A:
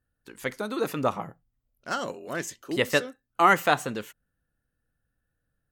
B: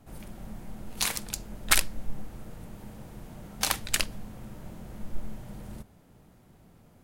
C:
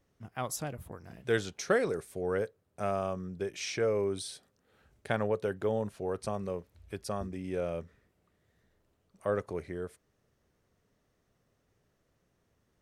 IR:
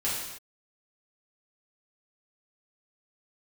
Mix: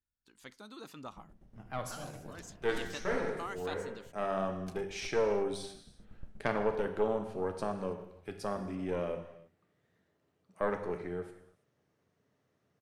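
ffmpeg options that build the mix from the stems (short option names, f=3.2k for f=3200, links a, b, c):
-filter_complex "[0:a]equalizer=f=125:t=o:w=1:g=-5,equalizer=f=500:t=o:w=1:g=-9,equalizer=f=2k:t=o:w=1:g=-6,equalizer=f=4k:t=o:w=1:g=5,equalizer=f=8k:t=o:w=1:g=3,equalizer=f=16k:t=o:w=1:g=-10,acompressor=threshold=-25dB:ratio=2.5,volume=-14.5dB,asplit=2[a][b];[1:a]lowpass=12k,tiltshelf=f=890:g=8,aeval=exprs='val(0)*pow(10,-18*if(lt(mod(8.3*n/s,1),2*abs(8.3)/1000),1-mod(8.3*n/s,1)/(2*abs(8.3)/1000),(mod(8.3*n/s,1)-2*abs(8.3)/1000)/(1-2*abs(8.3)/1000))/20)':c=same,adelay=1050,volume=-17.5dB[c];[2:a]highpass=f=100:w=0.5412,highpass=f=100:w=1.3066,highshelf=f=5.8k:g=-9.5,aeval=exprs='(tanh(11.2*val(0)+0.75)-tanh(0.75))/11.2':c=same,adelay=1350,volume=1dB,asplit=3[d][e][f];[e]volume=-11dB[g];[f]volume=-23.5dB[h];[b]apad=whole_len=624515[i];[d][i]sidechaincompress=threshold=-54dB:ratio=8:attack=8.6:release=491[j];[3:a]atrim=start_sample=2205[k];[g][k]afir=irnorm=-1:irlink=0[l];[h]aecho=0:1:328:1[m];[a][c][j][l][m]amix=inputs=5:normalize=0"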